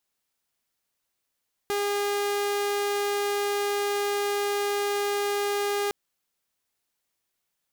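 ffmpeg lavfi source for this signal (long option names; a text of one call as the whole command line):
ffmpeg -f lavfi -i "aevalsrc='0.0794*(2*mod(407*t,1)-1)':duration=4.21:sample_rate=44100" out.wav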